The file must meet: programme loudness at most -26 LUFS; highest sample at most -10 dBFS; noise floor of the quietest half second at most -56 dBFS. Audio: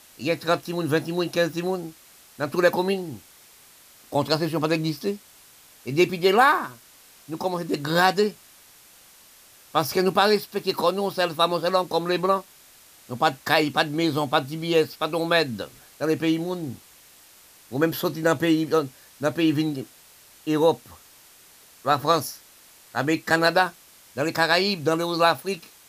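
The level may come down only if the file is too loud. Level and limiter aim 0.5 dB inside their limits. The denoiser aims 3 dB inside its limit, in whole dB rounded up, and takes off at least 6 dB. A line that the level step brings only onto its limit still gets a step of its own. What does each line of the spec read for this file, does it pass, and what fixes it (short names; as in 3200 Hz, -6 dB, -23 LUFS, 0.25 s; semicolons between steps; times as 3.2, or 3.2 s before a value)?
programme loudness -23.5 LUFS: fail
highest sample -5.5 dBFS: fail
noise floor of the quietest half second -52 dBFS: fail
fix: denoiser 6 dB, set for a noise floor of -52 dBFS; gain -3 dB; limiter -10.5 dBFS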